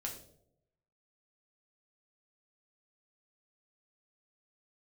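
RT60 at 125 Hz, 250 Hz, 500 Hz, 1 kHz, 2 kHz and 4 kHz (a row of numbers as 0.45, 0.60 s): 1.0, 0.85, 0.90, 0.65, 0.40, 0.45 s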